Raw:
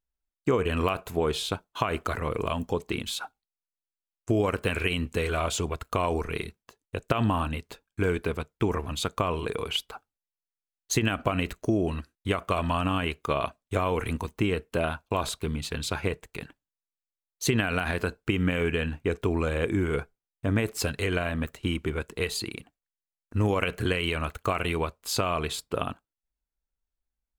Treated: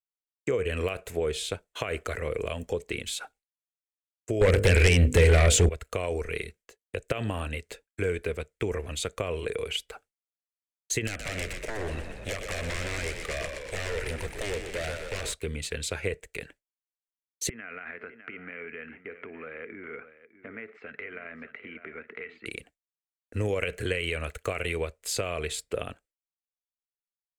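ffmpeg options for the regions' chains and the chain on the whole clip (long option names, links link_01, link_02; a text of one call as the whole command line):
ffmpeg -i in.wav -filter_complex "[0:a]asettb=1/sr,asplit=3[link_01][link_02][link_03];[link_01]atrim=end=4.414[link_04];[link_02]atrim=start=4.41:end=5.69,asetpts=PTS-STARTPTS,afade=type=in:duration=0.004:curve=qsin,afade=type=out:start_time=1.276:duration=0.004:curve=qsin,lowshelf=frequency=440:gain=5,bandreject=frequency=50:width_type=h:width=6,bandreject=frequency=100:width_type=h:width=6,bandreject=frequency=150:width_type=h:width=6,bandreject=frequency=200:width_type=h:width=6,bandreject=frequency=250:width_type=h:width=6,bandreject=frequency=300:width_type=h:width=6,bandreject=frequency=350:width_type=h:width=6,bandreject=frequency=400:width_type=h:width=6,bandreject=frequency=450:width_type=h:width=6,bandreject=frequency=500:width_type=h:width=6,aeval=exprs='0.316*sin(PI/2*3.16*val(0)/0.316)':channel_layout=same[link_05];[link_03]atrim=start=5.686[link_06];[link_04][link_05]acrossfade=duration=0.004:curve1=hsin:curve2=qsin[link_07];[link_07][link_06]acrossfade=duration=0.004:curve1=qsin:curve2=hsin,asettb=1/sr,asplit=3[link_08][link_09][link_10];[link_08]atrim=end=11.074[link_11];[link_09]atrim=start=11.07:end=15.33,asetpts=PTS-STARTPTS,afade=type=in:duration=0.004:curve=qsin,afade=type=out:start_time=4.256:duration=0.004:curve=qsin,aeval=exprs='0.0501*(abs(mod(val(0)/0.0501+3,4)-2)-1)':channel_layout=same,asplit=9[link_12][link_13][link_14][link_15][link_16][link_17][link_18][link_19][link_20];[link_13]adelay=122,afreqshift=-65,volume=-7dB[link_21];[link_14]adelay=244,afreqshift=-130,volume=-11.4dB[link_22];[link_15]adelay=366,afreqshift=-195,volume=-15.9dB[link_23];[link_16]adelay=488,afreqshift=-260,volume=-20.3dB[link_24];[link_17]adelay=610,afreqshift=-325,volume=-24.7dB[link_25];[link_18]adelay=732,afreqshift=-390,volume=-29.2dB[link_26];[link_19]adelay=854,afreqshift=-455,volume=-33.6dB[link_27];[link_20]adelay=976,afreqshift=-520,volume=-38.1dB[link_28];[link_12][link_21][link_22][link_23][link_24][link_25][link_26][link_27][link_28]amix=inputs=9:normalize=0,atrim=end_sample=187866[link_29];[link_10]atrim=start=15.326[link_30];[link_11][link_29]acrossfade=duration=0.004:curve1=hsin:curve2=qsin[link_31];[link_31][link_30]acrossfade=duration=0.004:curve1=qsin:curve2=hsin,asettb=1/sr,asplit=3[link_32][link_33][link_34];[link_32]atrim=end=17.494[link_35];[link_33]atrim=start=17.49:end=22.46,asetpts=PTS-STARTPTS,afade=type=in:duration=0.004:curve=qsin,afade=type=out:start_time=4.966:duration=0.004:curve=qsin,acompressor=threshold=-40dB:ratio=4:attack=3.2:release=140:knee=1:detection=peak,highpass=220,equalizer=frequency=230:width_type=q:width=4:gain=8,equalizer=frequency=350:width_type=q:width=4:gain=-4,equalizer=frequency=540:width_type=q:width=4:gain=-7,equalizer=frequency=1300:width_type=q:width=4:gain=9,equalizer=frequency=2100:width_type=q:width=4:gain=6,lowpass=frequency=2300:width=0.5412,lowpass=frequency=2300:width=1.3066,aecho=1:1:604:0.224,atrim=end_sample=219177[link_36];[link_34]atrim=start=22.456[link_37];[link_35][link_36]acrossfade=duration=0.004:curve1=hsin:curve2=qsin[link_38];[link_38][link_37]acrossfade=duration=0.004:curve1=qsin:curve2=hsin,agate=range=-33dB:threshold=-49dB:ratio=3:detection=peak,equalizer=frequency=125:width_type=o:width=1:gain=-5,equalizer=frequency=250:width_type=o:width=1:gain=-4,equalizer=frequency=500:width_type=o:width=1:gain=12,equalizer=frequency=1000:width_type=o:width=1:gain=-9,equalizer=frequency=2000:width_type=o:width=1:gain=11,equalizer=frequency=8000:width_type=o:width=1:gain=10,acrossover=split=160[link_39][link_40];[link_40]acompressor=threshold=-43dB:ratio=1.5[link_41];[link_39][link_41]amix=inputs=2:normalize=0" out.wav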